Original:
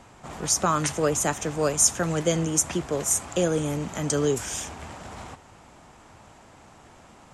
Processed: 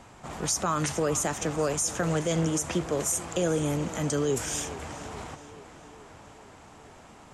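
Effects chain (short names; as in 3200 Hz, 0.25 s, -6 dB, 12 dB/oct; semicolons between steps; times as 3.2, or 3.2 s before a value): limiter -17.5 dBFS, peak gain reduction 10.5 dB; tape echo 0.428 s, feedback 70%, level -14.5 dB, low-pass 5700 Hz; 1.18–2.83 Doppler distortion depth 0.13 ms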